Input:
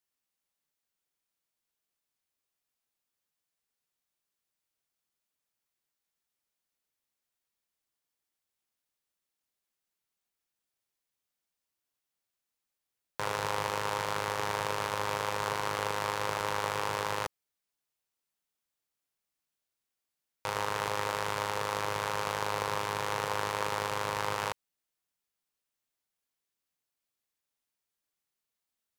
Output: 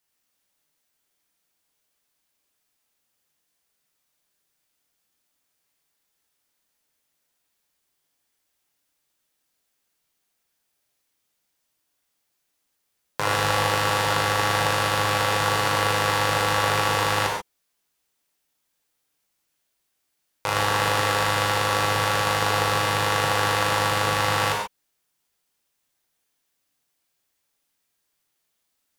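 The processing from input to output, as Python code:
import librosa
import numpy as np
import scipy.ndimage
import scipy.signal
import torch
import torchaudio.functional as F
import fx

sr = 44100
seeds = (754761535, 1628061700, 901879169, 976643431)

y = fx.rev_gated(x, sr, seeds[0], gate_ms=160, shape='flat', drr_db=-1.0)
y = y * 10.0 ** (8.0 / 20.0)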